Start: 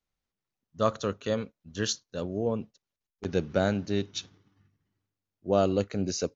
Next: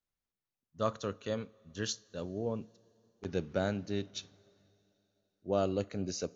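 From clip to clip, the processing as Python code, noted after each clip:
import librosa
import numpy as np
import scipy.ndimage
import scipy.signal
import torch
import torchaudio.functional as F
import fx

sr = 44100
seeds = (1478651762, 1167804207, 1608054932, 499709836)

y = fx.rev_double_slope(x, sr, seeds[0], early_s=0.31, late_s=3.7, knee_db=-18, drr_db=18.0)
y = y * 10.0 ** (-6.5 / 20.0)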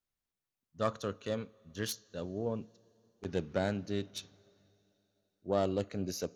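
y = fx.self_delay(x, sr, depth_ms=0.1)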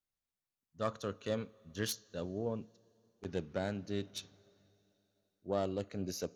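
y = fx.rider(x, sr, range_db=4, speed_s=0.5)
y = y * 10.0 ** (-2.5 / 20.0)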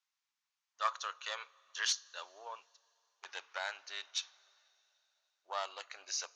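y = scipy.signal.sosfilt(scipy.signal.ellip(3, 1.0, 60, [930.0, 6500.0], 'bandpass', fs=sr, output='sos'), x)
y = y * 10.0 ** (8.0 / 20.0)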